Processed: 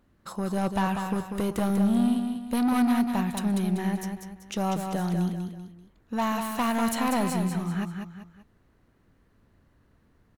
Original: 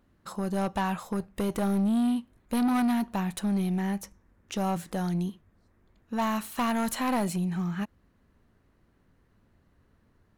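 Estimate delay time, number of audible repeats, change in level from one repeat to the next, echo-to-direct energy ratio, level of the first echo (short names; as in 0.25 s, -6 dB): 0.193 s, 3, -8.0 dB, -5.5 dB, -6.0 dB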